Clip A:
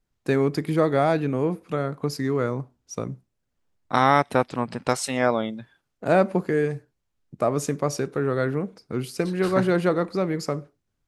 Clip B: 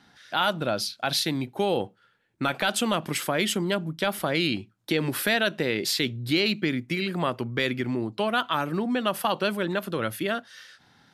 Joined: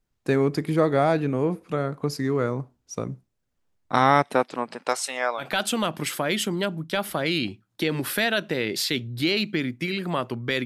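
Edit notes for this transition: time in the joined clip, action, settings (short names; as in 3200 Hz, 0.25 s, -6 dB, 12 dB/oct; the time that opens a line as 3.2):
clip A
4.26–5.47 HPF 190 Hz -> 1000 Hz
5.42 switch to clip B from 2.51 s, crossfade 0.10 s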